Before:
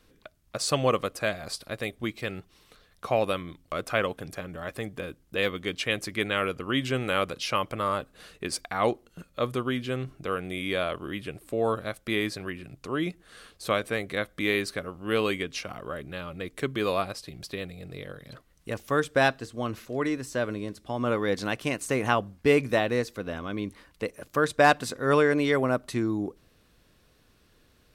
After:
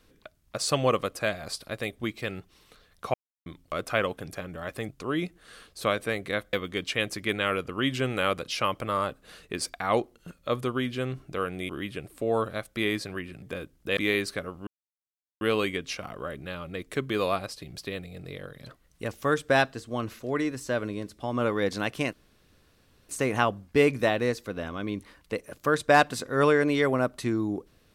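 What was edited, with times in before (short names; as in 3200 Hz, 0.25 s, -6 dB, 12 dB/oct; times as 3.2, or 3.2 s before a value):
3.14–3.46 mute
4.89–5.44 swap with 12.73–14.37
10.6–11 cut
15.07 insert silence 0.74 s
21.79 insert room tone 0.96 s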